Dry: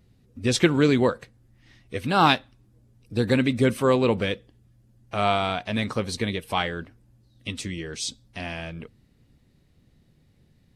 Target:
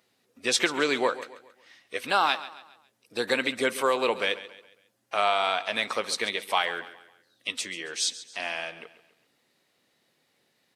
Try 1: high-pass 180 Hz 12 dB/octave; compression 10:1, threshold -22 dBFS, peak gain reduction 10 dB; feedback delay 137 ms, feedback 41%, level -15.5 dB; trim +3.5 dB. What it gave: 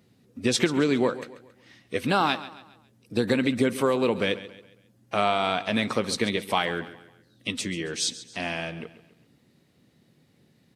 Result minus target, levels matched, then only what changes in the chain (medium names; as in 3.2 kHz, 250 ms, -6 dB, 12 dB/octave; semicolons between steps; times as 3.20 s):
250 Hz band +9.0 dB
change: high-pass 630 Hz 12 dB/octave